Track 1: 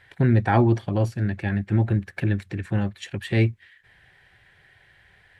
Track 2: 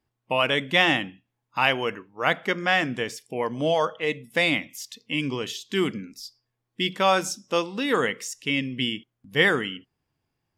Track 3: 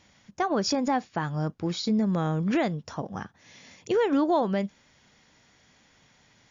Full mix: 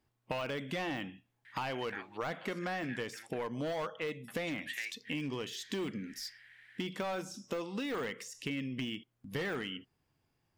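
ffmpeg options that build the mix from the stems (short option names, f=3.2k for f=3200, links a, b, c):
-filter_complex "[0:a]acompressor=threshold=-20dB:ratio=6,highpass=f=1.9k:t=q:w=1.9,adelay=1450,volume=-5.5dB,asplit=3[a][b][c];[a]atrim=end=3.47,asetpts=PTS-STARTPTS,afade=t=out:st=3.466:d=0.004:c=hsin[d];[b]atrim=start=3.47:end=4.28,asetpts=PTS-STARTPTS,volume=0[e];[c]atrim=start=4.28,asetpts=PTS-STARTPTS,afade=t=in:d=0.004:c=hsin[f];[d][e][f]concat=n=3:v=0:a=1[g];[1:a]deesser=0.95,asoftclip=type=hard:threshold=-22dB,volume=0.5dB[h];[g][h]amix=inputs=2:normalize=0,acompressor=threshold=-35dB:ratio=6"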